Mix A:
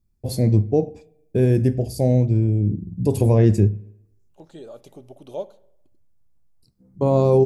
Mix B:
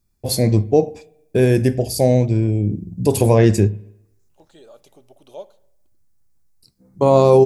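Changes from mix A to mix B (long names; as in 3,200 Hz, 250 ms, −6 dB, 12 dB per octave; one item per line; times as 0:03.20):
first voice +11.5 dB
master: add low-shelf EQ 480 Hz −12 dB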